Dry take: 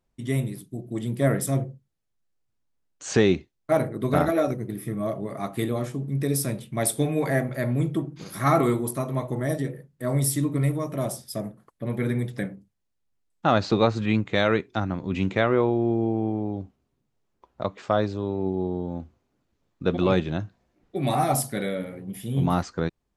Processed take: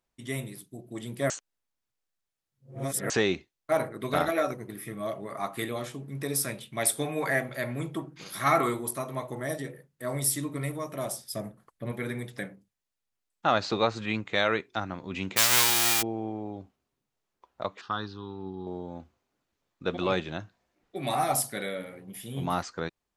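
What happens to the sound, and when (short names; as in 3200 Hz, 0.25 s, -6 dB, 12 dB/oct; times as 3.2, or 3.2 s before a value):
1.3–3.1 reverse
3.78–8.69 LFO bell 1.2 Hz 930–3600 Hz +6 dB
11.32–11.92 low shelf 170 Hz +9.5 dB
15.36–16.01 spectral whitening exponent 0.1
17.81–18.67 fixed phaser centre 2200 Hz, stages 6
whole clip: low shelf 440 Hz -12 dB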